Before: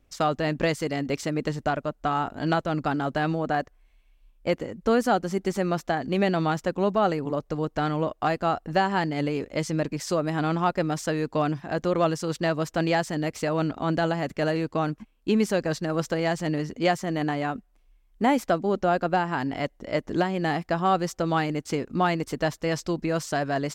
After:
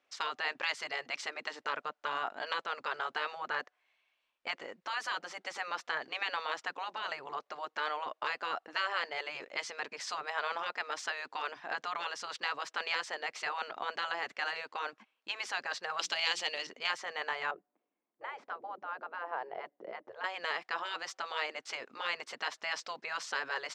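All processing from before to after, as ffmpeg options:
ffmpeg -i in.wav -filter_complex "[0:a]asettb=1/sr,asplit=3[link_01][link_02][link_03];[link_01]atrim=end=15.994[link_04];[link_02]atrim=start=15.99:end=16.67,asetpts=PTS-STARTPTS,afade=type=in:duration=0.004:curve=qsin,afade=type=out:start_time=0.676:duration=0.004:curve=qsin,highshelf=frequency=2200:width_type=q:width=1.5:gain=8,bandreject=frequency=60:width_type=h:width=6,bandreject=frequency=120:width_type=h:width=6,bandreject=frequency=180:width_type=h:width=6,bandreject=frequency=240:width_type=h:width=6,bandreject=frequency=300:width_type=h:width=6,bandreject=frequency=360:width_type=h:width=6[link_05];[link_03]atrim=start=16.666[link_06];[link_04][link_05]acrossfade=duration=0.004:curve1=hsin:curve2=qsin[link_07];[link_07][link_06]acrossfade=duration=0.004:curve1=qsin:curve2=hsin,asettb=1/sr,asplit=3[link_08][link_09][link_10];[link_08]atrim=end=17.514[link_11];[link_09]atrim=start=17.51:end=20.24,asetpts=PTS-STARTPTS,afade=type=in:duration=0.004:curve=qsin,afade=type=out:start_time=2.726:duration=0.004:curve=qsin,bandpass=frequency=230:width_type=q:width=0.55,equalizer=frequency=240:width_type=o:width=2.2:gain=14.5[link_12];[link_10]atrim=start=20.236[link_13];[link_11][link_12]acrossfade=duration=0.004:curve1=hsin:curve2=qsin[link_14];[link_14][link_13]acrossfade=duration=0.004:curve1=qsin:curve2=hsin,lowpass=4500,afftfilt=real='re*lt(hypot(re,im),0.2)':imag='im*lt(hypot(re,im),0.2)':win_size=1024:overlap=0.75,highpass=770" out.wav

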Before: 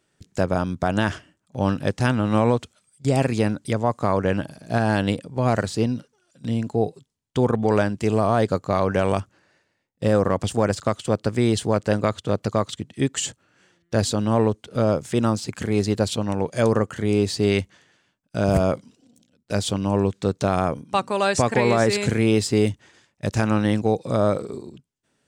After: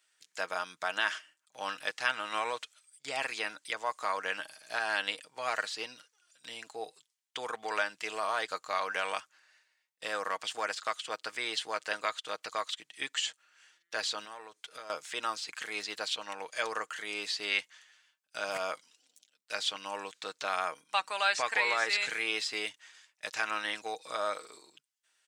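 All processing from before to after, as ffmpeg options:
ffmpeg -i in.wav -filter_complex "[0:a]asettb=1/sr,asplit=3[link_01][link_02][link_03];[link_01]atrim=end=14.254[link_04];[link_02]atrim=start=14.25:end=14.9,asetpts=PTS-STARTPTS,afade=type=in:duration=0.004:curve=qsin,afade=type=out:start_time=0.646:duration=0.004:curve=qsin,bandreject=frequency=2900:width=15,acompressor=threshold=-26dB:ratio=8:attack=3.2:release=140:knee=1:detection=peak[link_05];[link_03]atrim=start=14.896[link_06];[link_04][link_05]acrossfade=duration=0.004:curve1=hsin:curve2=qsin[link_07];[link_07][link_06]acrossfade=duration=0.004:curve1=qsin:curve2=hsin,highpass=1500,acrossover=split=4700[link_08][link_09];[link_09]acompressor=threshold=-48dB:ratio=4:attack=1:release=60[link_10];[link_08][link_10]amix=inputs=2:normalize=0,aecho=1:1:6.4:0.41" out.wav

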